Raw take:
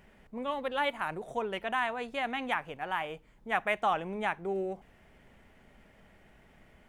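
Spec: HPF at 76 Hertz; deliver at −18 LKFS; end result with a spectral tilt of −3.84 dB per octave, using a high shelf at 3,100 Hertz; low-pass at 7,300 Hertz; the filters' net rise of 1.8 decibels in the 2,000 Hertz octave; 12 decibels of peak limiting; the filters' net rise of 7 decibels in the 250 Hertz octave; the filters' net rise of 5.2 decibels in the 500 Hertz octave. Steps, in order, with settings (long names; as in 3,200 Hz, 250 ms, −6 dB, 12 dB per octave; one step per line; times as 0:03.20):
high-pass filter 76 Hz
low-pass filter 7,300 Hz
parametric band 250 Hz +7.5 dB
parametric band 500 Hz +4.5 dB
parametric band 2,000 Hz +3 dB
high-shelf EQ 3,100 Hz −3.5 dB
level +16 dB
brickwall limiter −8 dBFS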